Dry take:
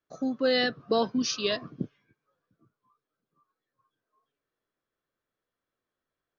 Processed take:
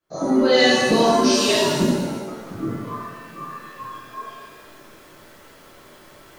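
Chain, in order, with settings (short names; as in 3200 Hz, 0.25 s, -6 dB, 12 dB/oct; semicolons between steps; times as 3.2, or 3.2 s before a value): recorder AGC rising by 53 dB/s; shimmer reverb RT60 1.3 s, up +7 st, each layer -8 dB, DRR -9.5 dB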